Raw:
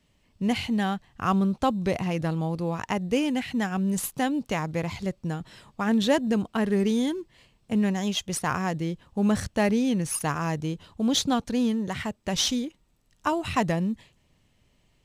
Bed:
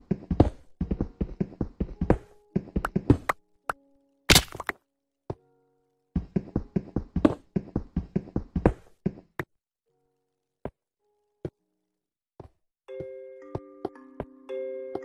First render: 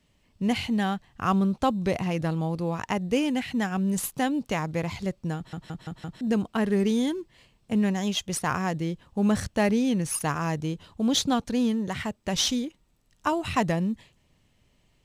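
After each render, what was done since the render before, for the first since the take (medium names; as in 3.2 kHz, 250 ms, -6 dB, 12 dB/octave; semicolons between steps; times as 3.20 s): 5.36 s: stutter in place 0.17 s, 5 plays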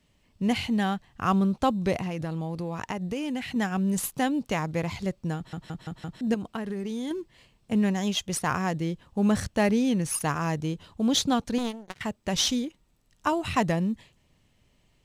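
1.96–3.56 s: compression 5:1, threshold -27 dBFS; 6.34–7.11 s: compression 12:1, threshold -28 dBFS; 11.58–12.01 s: power-law waveshaper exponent 3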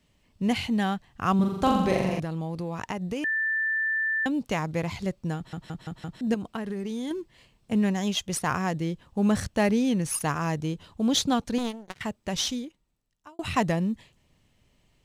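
1.35–2.20 s: flutter echo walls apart 7.3 m, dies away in 1 s; 3.24–4.26 s: bleep 1.77 kHz -23.5 dBFS; 11.99–13.39 s: fade out linear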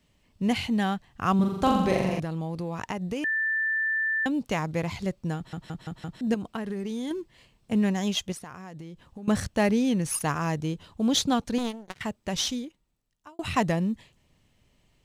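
8.32–9.28 s: compression 12:1, threshold -37 dBFS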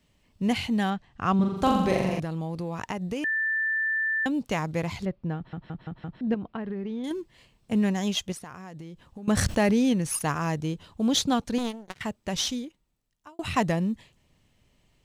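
0.90–1.57 s: distance through air 73 m; 5.05–7.04 s: distance through air 350 m; 9.37–9.93 s: level flattener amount 70%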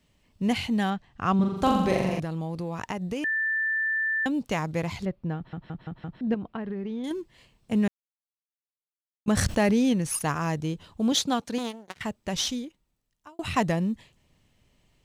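7.88–9.26 s: mute; 11.12–11.97 s: high-pass 250 Hz 6 dB/octave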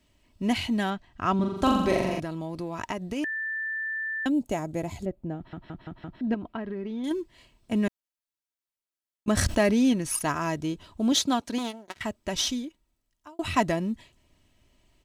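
4.29–5.41 s: time-frequency box 890–6400 Hz -9 dB; comb 3.1 ms, depth 46%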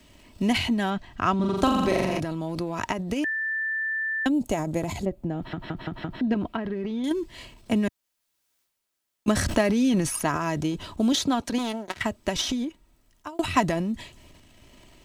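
transient shaper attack +5 dB, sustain +9 dB; three bands compressed up and down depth 40%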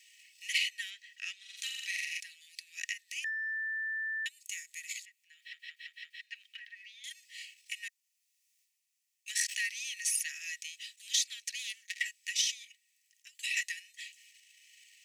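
in parallel at -12 dB: one-sided clip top -25 dBFS; on the sum: rippled Chebyshev high-pass 1.8 kHz, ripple 6 dB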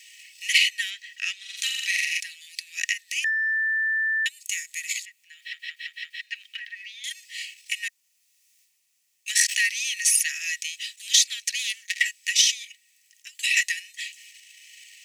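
trim +11.5 dB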